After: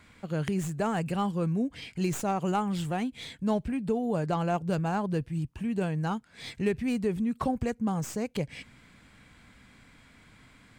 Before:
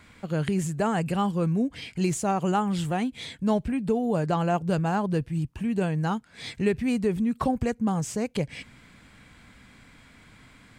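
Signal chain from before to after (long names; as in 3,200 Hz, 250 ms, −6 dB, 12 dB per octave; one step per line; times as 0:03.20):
stylus tracing distortion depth 0.048 ms
level −3.5 dB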